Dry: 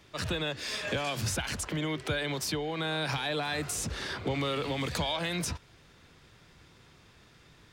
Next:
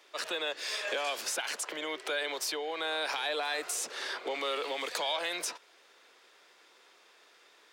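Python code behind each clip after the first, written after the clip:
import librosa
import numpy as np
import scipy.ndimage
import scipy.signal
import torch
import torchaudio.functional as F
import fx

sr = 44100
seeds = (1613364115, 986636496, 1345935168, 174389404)

y = scipy.signal.sosfilt(scipy.signal.butter(4, 410.0, 'highpass', fs=sr, output='sos'), x)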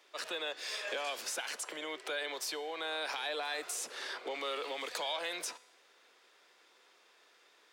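y = fx.comb_fb(x, sr, f0_hz=250.0, decay_s=0.84, harmonics='all', damping=0.0, mix_pct=50)
y = y * 10.0 ** (1.5 / 20.0)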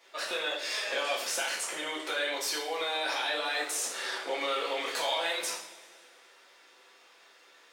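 y = fx.rev_double_slope(x, sr, seeds[0], early_s=0.5, late_s=2.1, knee_db=-18, drr_db=-6.0)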